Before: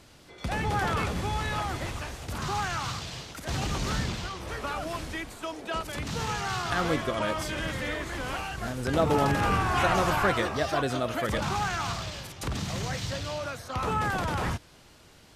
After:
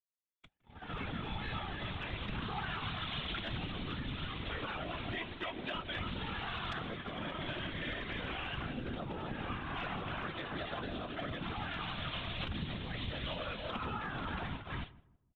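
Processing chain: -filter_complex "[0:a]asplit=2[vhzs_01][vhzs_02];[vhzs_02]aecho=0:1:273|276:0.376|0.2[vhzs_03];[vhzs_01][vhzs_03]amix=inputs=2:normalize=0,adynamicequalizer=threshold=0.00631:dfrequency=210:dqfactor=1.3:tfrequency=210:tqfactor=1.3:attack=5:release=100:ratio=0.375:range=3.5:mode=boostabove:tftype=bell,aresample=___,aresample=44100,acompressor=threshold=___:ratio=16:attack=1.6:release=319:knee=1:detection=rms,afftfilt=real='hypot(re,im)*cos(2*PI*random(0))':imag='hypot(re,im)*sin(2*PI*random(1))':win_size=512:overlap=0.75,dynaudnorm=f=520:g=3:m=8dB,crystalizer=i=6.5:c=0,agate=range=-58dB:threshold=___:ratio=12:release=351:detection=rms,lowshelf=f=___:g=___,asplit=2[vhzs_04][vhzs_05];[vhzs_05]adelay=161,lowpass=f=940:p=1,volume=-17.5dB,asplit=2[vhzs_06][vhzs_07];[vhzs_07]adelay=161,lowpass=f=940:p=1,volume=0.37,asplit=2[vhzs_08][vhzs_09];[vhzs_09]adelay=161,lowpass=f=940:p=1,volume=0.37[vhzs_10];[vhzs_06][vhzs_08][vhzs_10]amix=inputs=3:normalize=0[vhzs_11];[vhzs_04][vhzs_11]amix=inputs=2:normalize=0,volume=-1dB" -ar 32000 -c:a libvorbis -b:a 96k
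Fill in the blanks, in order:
8000, -38dB, -39dB, 160, 6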